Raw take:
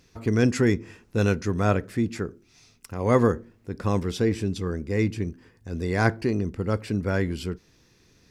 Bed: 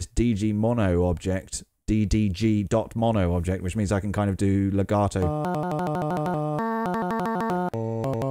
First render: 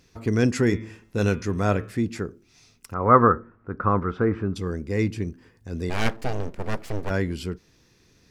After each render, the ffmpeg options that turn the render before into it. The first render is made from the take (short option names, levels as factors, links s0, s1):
-filter_complex "[0:a]asplit=3[s0][s1][s2];[s0]afade=t=out:st=0.69:d=0.02[s3];[s1]bandreject=f=109.7:t=h:w=4,bandreject=f=219.4:t=h:w=4,bandreject=f=329.1:t=h:w=4,bandreject=f=438.8:t=h:w=4,bandreject=f=548.5:t=h:w=4,bandreject=f=658.2:t=h:w=4,bandreject=f=767.9:t=h:w=4,bandreject=f=877.6:t=h:w=4,bandreject=f=987.3:t=h:w=4,bandreject=f=1097:t=h:w=4,bandreject=f=1206.7:t=h:w=4,bandreject=f=1316.4:t=h:w=4,bandreject=f=1426.1:t=h:w=4,bandreject=f=1535.8:t=h:w=4,bandreject=f=1645.5:t=h:w=4,bandreject=f=1755.2:t=h:w=4,bandreject=f=1864.9:t=h:w=4,bandreject=f=1974.6:t=h:w=4,bandreject=f=2084.3:t=h:w=4,bandreject=f=2194:t=h:w=4,bandreject=f=2303.7:t=h:w=4,bandreject=f=2413.4:t=h:w=4,bandreject=f=2523.1:t=h:w=4,bandreject=f=2632.8:t=h:w=4,bandreject=f=2742.5:t=h:w=4,bandreject=f=2852.2:t=h:w=4,bandreject=f=2961.9:t=h:w=4,bandreject=f=3071.6:t=h:w=4,bandreject=f=3181.3:t=h:w=4,bandreject=f=3291:t=h:w=4,bandreject=f=3400.7:t=h:w=4,bandreject=f=3510.4:t=h:w=4,bandreject=f=3620.1:t=h:w=4,bandreject=f=3729.8:t=h:w=4,bandreject=f=3839.5:t=h:w=4,afade=t=in:st=0.69:d=0.02,afade=t=out:st=1.9:d=0.02[s4];[s2]afade=t=in:st=1.9:d=0.02[s5];[s3][s4][s5]amix=inputs=3:normalize=0,asplit=3[s6][s7][s8];[s6]afade=t=out:st=2.93:d=0.02[s9];[s7]lowpass=f=1300:t=q:w=7.1,afade=t=in:st=2.93:d=0.02,afade=t=out:st=4.55:d=0.02[s10];[s8]afade=t=in:st=4.55:d=0.02[s11];[s9][s10][s11]amix=inputs=3:normalize=0,asplit=3[s12][s13][s14];[s12]afade=t=out:st=5.89:d=0.02[s15];[s13]aeval=exprs='abs(val(0))':c=same,afade=t=in:st=5.89:d=0.02,afade=t=out:st=7.09:d=0.02[s16];[s14]afade=t=in:st=7.09:d=0.02[s17];[s15][s16][s17]amix=inputs=3:normalize=0"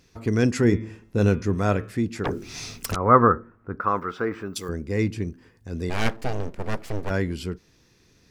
-filter_complex "[0:a]asettb=1/sr,asplit=3[s0][s1][s2];[s0]atrim=end=0.644[s3];[s1]atrim=start=0.64:end=1.55,asetpts=PTS-STARTPTS,afade=t=in:d=0.004:c=qsin,afade=t=out:st=0.906:d=0.004:c=qsin,tiltshelf=f=870:g=3.5[s4];[s2]atrim=start=1.546[s5];[s3][s4]acrossfade=d=0.004:c1=hsin:c2=qsin[s6];[s6][s5]acrossfade=d=0.004:c1=qsin:c2=hsin,asplit=3[s7][s8][s9];[s7]afade=t=out:st=2.24:d=0.02[s10];[s8]aeval=exprs='0.0944*sin(PI/2*6.31*val(0)/0.0944)':c=same,afade=t=in:st=2.24:d=0.02,afade=t=out:st=2.94:d=0.02[s11];[s9]afade=t=in:st=2.94:d=0.02[s12];[s10][s11][s12]amix=inputs=3:normalize=0,asettb=1/sr,asplit=3[s13][s14][s15];[s13]atrim=end=3.804[s16];[s14]atrim=start=3.8:end=4.69,asetpts=PTS-STARTPTS,afade=t=in:d=0.004:c=qsin,afade=t=out:st=0.886:d=0.004:c=qsin,aemphasis=mode=production:type=riaa[s17];[s15]atrim=start=4.686[s18];[s16][s17]acrossfade=d=0.004:c1=hsin:c2=qsin[s19];[s19][s18]acrossfade=d=0.004:c1=qsin:c2=hsin"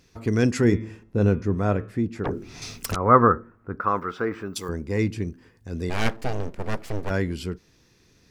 -filter_complex "[0:a]asettb=1/sr,asplit=3[s0][s1][s2];[s0]atrim=end=1.034[s3];[s1]atrim=start=1.03:end=2.62,asetpts=PTS-STARTPTS,afade=t=in:d=0.004:c=qsin,afade=t=out:st=1.586:d=0.004:c=qsin,highshelf=f=2200:g=-11[s4];[s2]atrim=start=2.616[s5];[s3][s4]acrossfade=d=0.004:c1=hsin:c2=qsin[s6];[s6][s5]acrossfade=d=0.004:c1=qsin:c2=hsin,asettb=1/sr,asplit=3[s7][s8][s9];[s7]atrim=end=4.564[s10];[s8]atrim=start=4.56:end=4.98,asetpts=PTS-STARTPTS,afade=t=in:d=0.004:c=qsin,afade=t=out:st=0.416:d=0.004:c=qsin,equalizer=f=930:t=o:w=0.39:g=7.5[s11];[s9]atrim=start=4.976[s12];[s10][s11]acrossfade=d=0.004:c1=hsin:c2=qsin[s13];[s13][s12]acrossfade=d=0.004:c1=qsin:c2=hsin"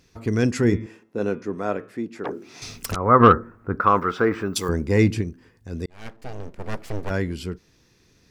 -filter_complex "[0:a]asettb=1/sr,asplit=3[s0][s1][s2];[s0]atrim=end=0.864[s3];[s1]atrim=start=0.86:end=2.62,asetpts=PTS-STARTPTS,afade=t=in:d=0.004:c=qsin,afade=t=out:st=1.756:d=0.004:c=qsin,highpass=280[s4];[s2]atrim=start=2.616[s5];[s3][s4]acrossfade=d=0.004:c1=hsin:c2=qsin[s6];[s6][s5]acrossfade=d=0.004:c1=qsin:c2=hsin,asplit=3[s7][s8][s9];[s7]afade=t=out:st=3.19:d=0.02[s10];[s8]acontrast=68,afade=t=in:st=3.19:d=0.02,afade=t=out:st=5.2:d=0.02[s11];[s9]afade=t=in:st=5.2:d=0.02[s12];[s10][s11][s12]amix=inputs=3:normalize=0,asplit=2[s13][s14];[s13]atrim=end=5.86,asetpts=PTS-STARTPTS,afade=t=out:st=5.856:d=0.004:c=hsin[s15];[s14]atrim=start=5.86,asetpts=PTS-STARTPTS,afade=t=in:d=1.07[s16];[s15][s16]concat=n=2:v=0:a=1"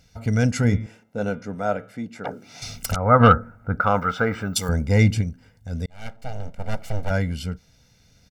-af "equalizer=f=1300:t=o:w=1.8:g=-2,aecho=1:1:1.4:0.86"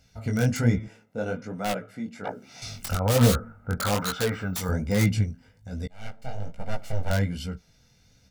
-filter_complex "[0:a]acrossover=split=650[s0][s1];[s1]aeval=exprs='(mod(10*val(0)+1,2)-1)/10':c=same[s2];[s0][s2]amix=inputs=2:normalize=0,flanger=delay=15:depth=7.7:speed=1.2"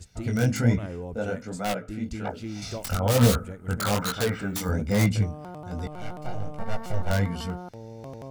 -filter_complex "[1:a]volume=0.211[s0];[0:a][s0]amix=inputs=2:normalize=0"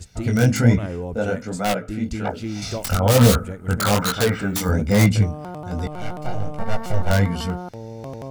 -af "volume=2.11,alimiter=limit=0.794:level=0:latency=1"